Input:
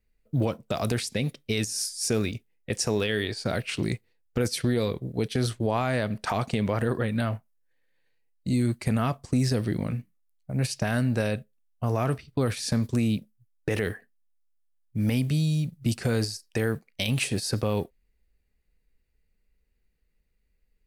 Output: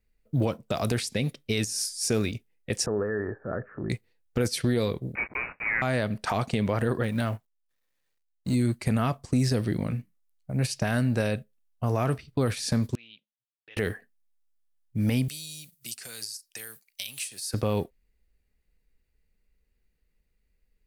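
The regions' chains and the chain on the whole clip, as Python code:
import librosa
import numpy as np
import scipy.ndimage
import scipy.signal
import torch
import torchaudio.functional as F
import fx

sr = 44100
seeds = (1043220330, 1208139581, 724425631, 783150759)

y = fx.chain(x, sr, fx.transient(attack_db=-6, sustain_db=8),
    fx.cheby_ripple(hz=1800.0, ripple_db=6), at=(2.86, 3.9))
y = fx.chain(y, sr, fx.block_float(bits=3),
    fx.highpass(hz=390.0, slope=12),
    fx.freq_invert(carrier_hz=2700), at=(5.15, 5.82))
y = fx.chain(y, sr, fx.law_mismatch(coded='A'),
    fx.high_shelf(hz=9300.0, db=4.5), at=(7.03, 8.55))
y = fx.chain(y, sr, fx.bandpass_q(hz=3200.0, q=4.6),
    fx.air_absorb(metres=250.0), at=(12.95, 13.77))
y = fx.chain(y, sr, fx.pre_emphasis(coefficient=0.97),
    fx.band_squash(depth_pct=70), at=(15.28, 17.54))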